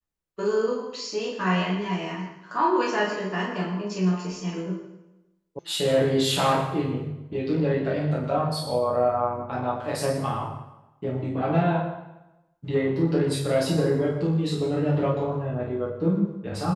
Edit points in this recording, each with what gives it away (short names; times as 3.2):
5.59 sound cut off